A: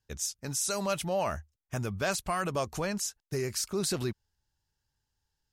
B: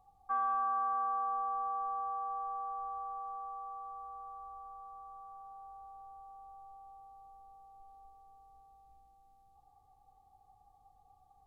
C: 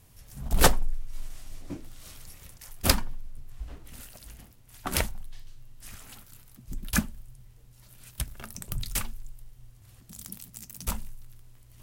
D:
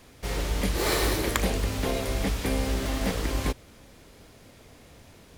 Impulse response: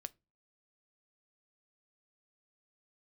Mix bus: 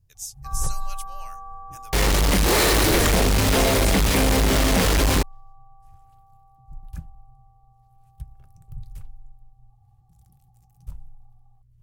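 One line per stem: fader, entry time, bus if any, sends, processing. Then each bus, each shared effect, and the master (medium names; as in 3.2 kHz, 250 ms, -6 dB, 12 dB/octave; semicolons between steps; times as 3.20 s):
-1.0 dB, 0.00 s, no send, differentiator
-7.0 dB, 0.15 s, no send, comb 3.6 ms, depth 36%
-3.0 dB, 0.00 s, no send, FFT filter 150 Hz 0 dB, 210 Hz -23 dB, 340 Hz -15 dB, 2.1 kHz -24 dB
-3.0 dB, 1.70 s, no send, fuzz box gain 41 dB, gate -39 dBFS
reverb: none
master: none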